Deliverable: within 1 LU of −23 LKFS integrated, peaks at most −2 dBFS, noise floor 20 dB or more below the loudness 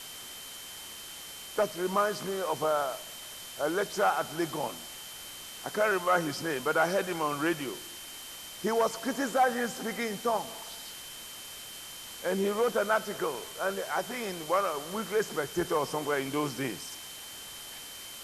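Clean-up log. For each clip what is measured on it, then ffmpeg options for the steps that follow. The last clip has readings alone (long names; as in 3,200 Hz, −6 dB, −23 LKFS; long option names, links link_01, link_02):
interfering tone 3,100 Hz; level of the tone −47 dBFS; background noise floor −44 dBFS; target noise floor −52 dBFS; integrated loudness −32.0 LKFS; sample peak −14.0 dBFS; target loudness −23.0 LKFS
→ -af "bandreject=frequency=3100:width=30"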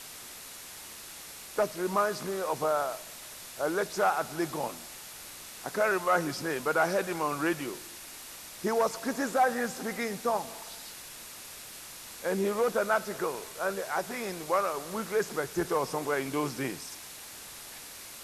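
interfering tone none found; background noise floor −46 dBFS; target noise floor −51 dBFS
→ -af "afftdn=noise_reduction=6:noise_floor=-46"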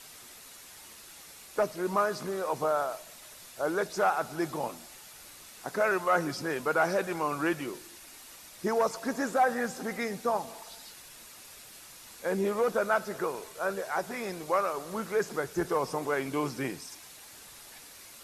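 background noise floor −50 dBFS; target noise floor −51 dBFS
→ -af "afftdn=noise_reduction=6:noise_floor=-50"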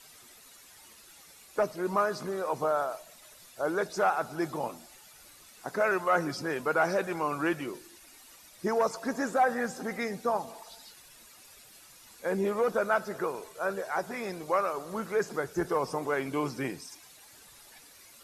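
background noise floor −55 dBFS; integrated loudness −30.5 LKFS; sample peak −14.5 dBFS; target loudness −23.0 LKFS
→ -af "volume=7.5dB"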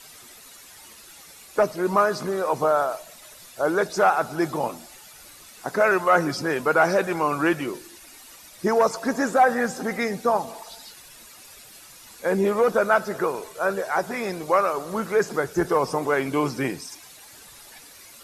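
integrated loudness −23.0 LKFS; sample peak −7.0 dBFS; background noise floor −47 dBFS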